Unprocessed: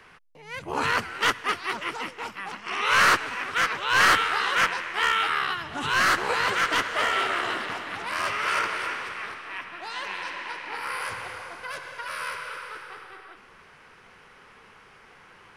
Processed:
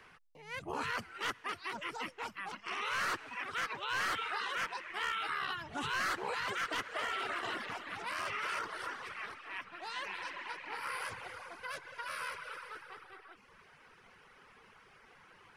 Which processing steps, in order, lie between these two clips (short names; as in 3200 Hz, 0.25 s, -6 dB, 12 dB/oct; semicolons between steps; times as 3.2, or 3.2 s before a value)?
reverb removal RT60 0.81 s; limiter -22 dBFS, peak gain reduction 10.5 dB; 8.59–9.03 bell 2400 Hz -11 dB 0.48 oct; gain -6 dB